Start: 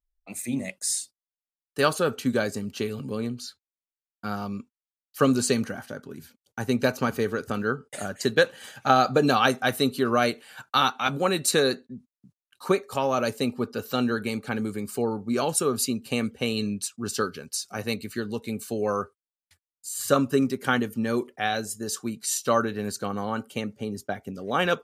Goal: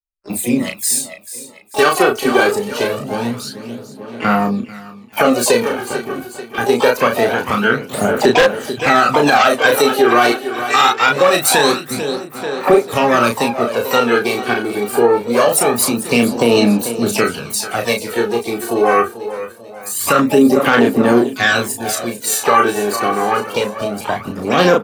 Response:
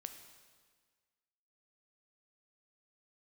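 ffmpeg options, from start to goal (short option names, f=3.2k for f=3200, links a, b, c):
-filter_complex "[0:a]agate=range=-34dB:threshold=-43dB:ratio=16:detection=peak,equalizer=f=6k:w=1.2:g=-7.5,acrossover=split=240|1400|5900[a][b][c][d];[a]acompressor=threshold=-43dB:ratio=10[e];[e][b][c][d]amix=inputs=4:normalize=0,asplit=3[f][g][h];[g]asetrate=66075,aresample=44100,atempo=0.66742,volume=-11dB[i];[h]asetrate=88200,aresample=44100,atempo=0.5,volume=-12dB[j];[f][i][j]amix=inputs=3:normalize=0,aecho=1:1:441|882|1323|1764|2205:0.2|0.0978|0.0479|0.0235|0.0115,aphaser=in_gain=1:out_gain=1:delay=2.7:decay=0.56:speed=0.24:type=sinusoidal,aeval=exprs='0.562*(abs(mod(val(0)/0.562+3,4)-2)-1)':c=same,asplit=2[k][l];[l]adelay=34,volume=-4.5dB[m];[k][m]amix=inputs=2:normalize=0,aeval=exprs='clip(val(0),-1,0.376)':c=same,alimiter=level_in=12.5dB:limit=-1dB:release=50:level=0:latency=1,volume=-1dB"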